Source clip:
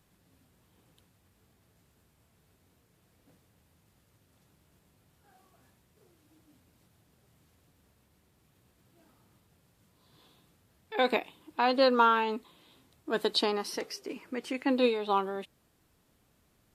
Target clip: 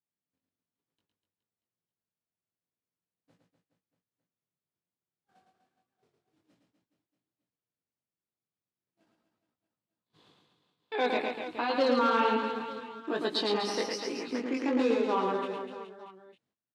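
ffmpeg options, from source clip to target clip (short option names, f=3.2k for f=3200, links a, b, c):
-filter_complex "[0:a]agate=range=-37dB:threshold=-60dB:ratio=16:detection=peak,asplit=2[a][b];[b]acompressor=threshold=-40dB:ratio=6,volume=0dB[c];[a][c]amix=inputs=2:normalize=0,alimiter=limit=-18.5dB:level=0:latency=1:release=46,asettb=1/sr,asplit=3[d][e][f];[d]atrim=end=14.314[g];[e]atrim=start=14.31:end=15.13,asetpts=PTS-STARTPTS,afade=t=in:d=0.004:c=qsin,afade=t=out:st=0.816:d=0.004:c=qsin,adynamicsmooth=sensitivity=5:basefreq=520[h];[f]atrim=start=15.126[i];[g][h]acrossfade=d=0.004:c1=hsin:c2=qsin[j];[j][i]acrossfade=d=0.004:c1=qsin:c2=hsin,flanger=delay=17:depth=5.5:speed=1.2,asoftclip=type=hard:threshold=-23dB,highpass=140,lowpass=5.9k,asplit=2[k][l];[l]aecho=0:1:110|247.5|419.4|634.2|902.8:0.631|0.398|0.251|0.158|0.1[m];[k][m]amix=inputs=2:normalize=0,volume=2.5dB"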